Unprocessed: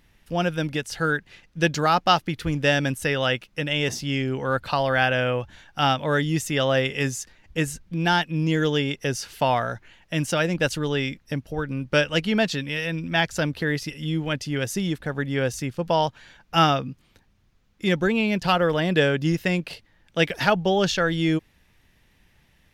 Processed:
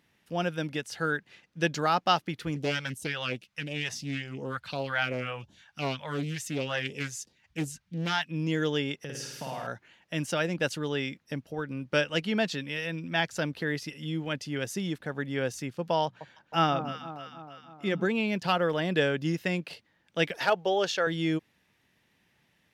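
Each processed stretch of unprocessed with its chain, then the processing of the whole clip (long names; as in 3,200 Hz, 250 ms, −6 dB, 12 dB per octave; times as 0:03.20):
0:02.56–0:08.29: all-pass phaser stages 2, 2.8 Hz, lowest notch 280–1,800 Hz + highs frequency-modulated by the lows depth 0.48 ms
0:09.04–0:09.67: parametric band 150 Hz +9 dB 0.37 octaves + downward compressor 12 to 1, threshold −28 dBFS + flutter between parallel walls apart 9 metres, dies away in 1 s
0:16.05–0:18.05: high-shelf EQ 3,400 Hz −7 dB + mains-hum notches 60/120/180 Hz + delay that swaps between a low-pass and a high-pass 157 ms, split 1,200 Hz, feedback 74%, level −9.5 dB
0:20.36–0:21.07: low shelf with overshoot 320 Hz −9 dB, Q 1.5 + hard clipping −9 dBFS
whole clip: high-pass filter 140 Hz 12 dB per octave; high-shelf EQ 9,900 Hz −4 dB; level −5.5 dB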